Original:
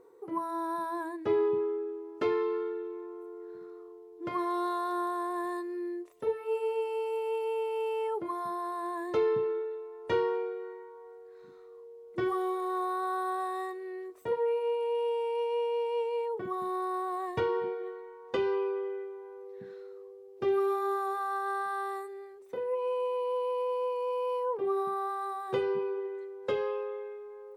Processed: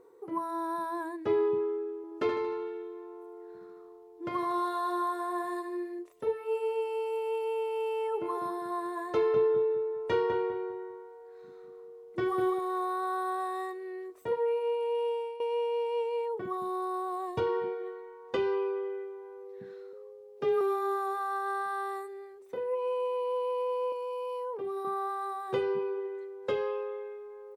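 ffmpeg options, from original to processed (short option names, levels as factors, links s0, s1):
-filter_complex "[0:a]asettb=1/sr,asplit=3[s0][s1][s2];[s0]atrim=end=1.964[s3];[s1]atrim=start=1.96:end=5.99,asetpts=PTS-STARTPTS,afade=t=in:d=0.004:c=qsin,afade=t=out:st=4.026:d=0.004:c=qsin,aecho=1:1:76|152|228|304|380|456|532:0.422|0.236|0.132|0.0741|0.0415|0.0232|0.013,atrim=end_sample=177723[s4];[s2]atrim=start=5.986[s5];[s3][s4]acrossfade=d=0.004:c1=hsin:c2=qsin[s6];[s6][s5]acrossfade=d=0.004:c1=qsin:c2=hsin,asplit=3[s7][s8][s9];[s7]afade=t=out:st=8.12:d=0.02[s10];[s8]asplit=2[s11][s12];[s12]adelay=200,lowpass=f=2000:p=1,volume=0.562,asplit=2[s13][s14];[s14]adelay=200,lowpass=f=2000:p=1,volume=0.34,asplit=2[s15][s16];[s16]adelay=200,lowpass=f=2000:p=1,volume=0.34,asplit=2[s17][s18];[s18]adelay=200,lowpass=f=2000:p=1,volume=0.34[s19];[s11][s13][s15][s17][s19]amix=inputs=5:normalize=0,afade=t=in:st=8.12:d=0.02,afade=t=out:st=12.58:d=0.02[s20];[s9]afade=t=in:st=12.58:d=0.02[s21];[s10][s20][s21]amix=inputs=3:normalize=0,asettb=1/sr,asplit=3[s22][s23][s24];[s22]atrim=end=16.574[s25];[s23]atrim=start=16.57:end=17.47,asetpts=PTS-STARTPTS,afade=t=in:d=0.004:c=qsin,afade=t=out:st=0.896:d=0.004:c=qsin,equalizer=f=1900:t=o:w=0.52:g=-9.5[s26];[s24]atrim=start=17.466[s27];[s25][s26]acrossfade=d=0.004:c1=hsin:c2=qsin[s28];[s28][s27]acrossfade=d=0.004:c1=qsin:c2=hsin,asettb=1/sr,asplit=3[s29][s30][s31];[s29]atrim=end=19.934[s32];[s30]atrim=start=19.93:end=20.61,asetpts=PTS-STARTPTS,afade=t=in:d=0.004:c=qsin,afade=t=out:st=0.676:d=0.004:c=qsin,afreqshift=25[s33];[s31]atrim=start=20.606[s34];[s32][s33]acrossfade=d=0.004:c1=hsin:c2=qsin[s35];[s35][s34]acrossfade=d=0.004:c1=qsin:c2=hsin,asettb=1/sr,asplit=3[s36][s37][s38];[s36]atrim=end=23.924[s39];[s37]atrim=start=23.92:end=24.85,asetpts=PTS-STARTPTS,afade=t=in:d=0.004:c=qsin,afade=t=out:st=0.926:d=0.004:c=qsin,acrossover=split=200|3000[s40][s41][s42];[s41]acompressor=threshold=0.0224:ratio=6:attack=3.2:release=140:knee=2.83:detection=peak[s43];[s40][s43][s42]amix=inputs=3:normalize=0[s44];[s38]atrim=start=24.846[s45];[s39][s44]acrossfade=d=0.004:c1=hsin:c2=qsin[s46];[s46][s45]acrossfade=d=0.004:c1=qsin:c2=hsin,asplit=2[s47][s48];[s47]atrim=end=15.4,asetpts=PTS-STARTPTS,afade=t=out:st=15:d=0.4:c=qsin:silence=0.177828[s49];[s48]atrim=start=15.4,asetpts=PTS-STARTPTS,afade=t=in:d=0.004:c=hsin:silence=0.177828[s50];[s49][s50]concat=n=2:v=0:a=1"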